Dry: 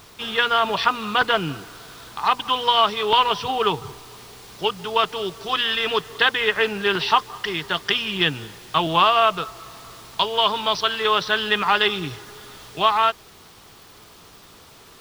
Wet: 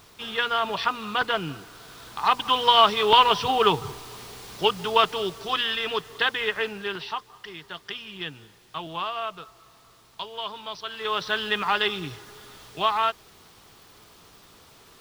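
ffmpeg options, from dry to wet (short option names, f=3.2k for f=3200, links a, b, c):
-af "volume=10dB,afade=t=in:st=1.7:d=1.12:silence=0.473151,afade=t=out:st=4.87:d=0.97:silence=0.473151,afade=t=out:st=6.43:d=0.71:silence=0.375837,afade=t=in:st=10.84:d=0.47:silence=0.354813"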